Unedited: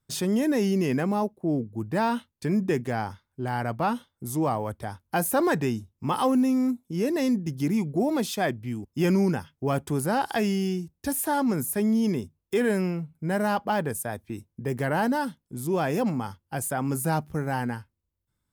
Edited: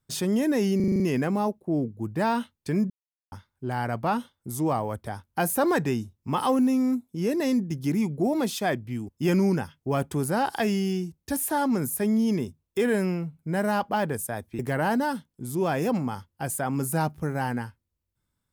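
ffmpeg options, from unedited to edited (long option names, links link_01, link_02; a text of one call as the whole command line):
ffmpeg -i in.wav -filter_complex "[0:a]asplit=10[link_01][link_02][link_03][link_04][link_05][link_06][link_07][link_08][link_09][link_10];[link_01]atrim=end=0.802[link_11];[link_02]atrim=start=0.758:end=0.802[link_12];[link_03]atrim=start=0.758:end=0.802[link_13];[link_04]atrim=start=0.758:end=0.802[link_14];[link_05]atrim=start=0.758:end=0.802[link_15];[link_06]atrim=start=0.758:end=0.802[link_16];[link_07]atrim=start=0.758:end=2.66,asetpts=PTS-STARTPTS,afade=type=out:start_time=1.898:duration=0.004:curve=hsin[link_17];[link_08]atrim=start=2.66:end=3.08,asetpts=PTS-STARTPTS,volume=0[link_18];[link_09]atrim=start=3.08:end=14.352,asetpts=PTS-STARTPTS,afade=type=in:duration=0.004:curve=hsin[link_19];[link_10]atrim=start=14.708[link_20];[link_11][link_12]acrossfade=duration=0.004:curve1=hsin:curve2=hsin[link_21];[link_21][link_13]acrossfade=duration=0.004:curve1=hsin:curve2=hsin[link_22];[link_22][link_14]acrossfade=duration=0.004:curve1=hsin:curve2=hsin[link_23];[link_23][link_15]acrossfade=duration=0.004:curve1=hsin:curve2=hsin[link_24];[link_24][link_16]acrossfade=duration=0.004:curve1=hsin:curve2=hsin[link_25];[link_17][link_18][link_19]concat=n=3:v=0:a=1[link_26];[link_25][link_26]acrossfade=duration=0.004:curve1=hsin:curve2=hsin[link_27];[link_27][link_20]acrossfade=duration=0.004:curve1=hsin:curve2=hsin" out.wav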